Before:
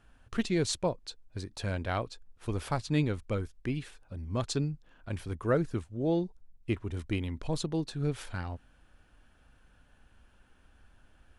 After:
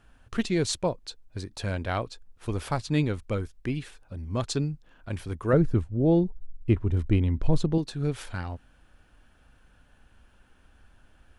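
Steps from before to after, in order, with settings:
0:05.53–0:07.78: spectral tilt −2.5 dB per octave
level +3 dB

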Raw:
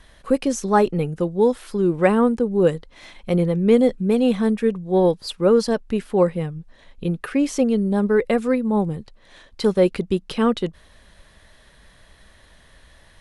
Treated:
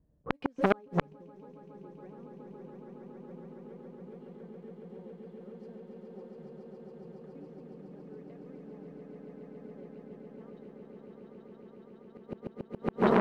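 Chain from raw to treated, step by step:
high-pass filter 87 Hz 12 dB per octave
noise gate with hold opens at −40 dBFS
low-pass that shuts in the quiet parts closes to 340 Hz, open at −13 dBFS
spectral tilt −1.5 dB per octave
in parallel at −10.5 dB: centre clipping without the shift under −23 dBFS
on the sum: downward compressor 10 to 1, threshold −19 dBFS, peak gain reduction 14 dB
flanger 0.26 Hz, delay 6.5 ms, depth 1.7 ms, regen +60%
echo that builds up and dies away 139 ms, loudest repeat 8, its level −4 dB
gate with flip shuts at −18 dBFS, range −39 dB
low-pass filter 3,700 Hz 6 dB per octave
saturating transformer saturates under 1,200 Hz
level +11.5 dB

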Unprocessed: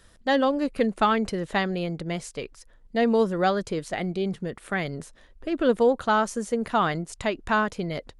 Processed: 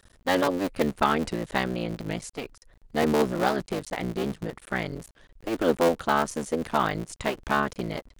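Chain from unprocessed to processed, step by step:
sub-harmonics by changed cycles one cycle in 3, muted
wow of a warped record 78 rpm, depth 160 cents

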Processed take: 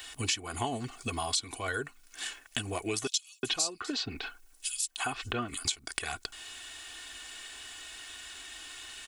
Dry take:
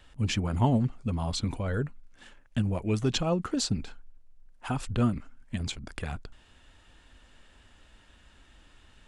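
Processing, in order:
spectral tilt +4.5 dB per octave
comb filter 2.7 ms, depth 68%
0:03.07–0:05.65: multiband delay without the direct sound highs, lows 360 ms, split 3,500 Hz
downward compressor 4 to 1, threshold −40 dBFS, peak gain reduction 20.5 dB
level +8.5 dB

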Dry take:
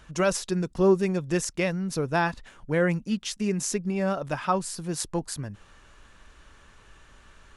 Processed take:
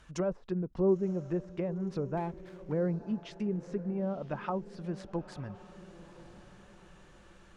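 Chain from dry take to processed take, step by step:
treble cut that deepens with the level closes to 670 Hz, closed at −23 dBFS
feedback delay with all-pass diffusion 984 ms, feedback 44%, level −15.5 dB
0:02.17–0:02.72: windowed peak hold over 9 samples
level −6 dB

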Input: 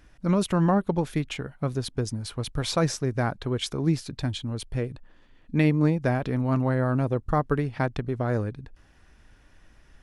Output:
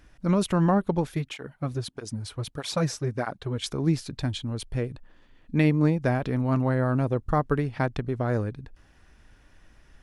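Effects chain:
0:01.07–0:03.64: through-zero flanger with one copy inverted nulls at 1.6 Hz, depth 5.9 ms

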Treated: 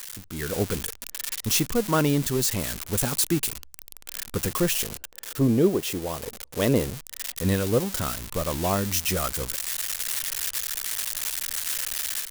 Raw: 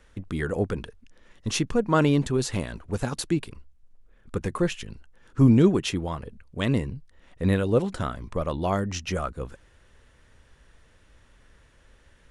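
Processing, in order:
spike at every zero crossing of −17 dBFS
0:04.72–0:06.95: parametric band 500 Hz +10.5 dB 1.3 octaves
automatic gain control gain up to 9.5 dB
level −8.5 dB

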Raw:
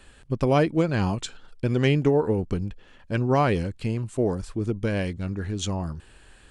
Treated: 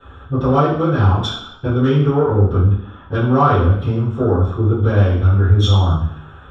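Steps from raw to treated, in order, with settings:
adaptive Wiener filter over 9 samples
downward compressor 2.5 to 1, threshold −27 dBFS, peak gain reduction 8 dB
soft clipping −19.5 dBFS, distortion −21 dB
convolution reverb RT60 0.70 s, pre-delay 3 ms, DRR −16.5 dB
level −7.5 dB

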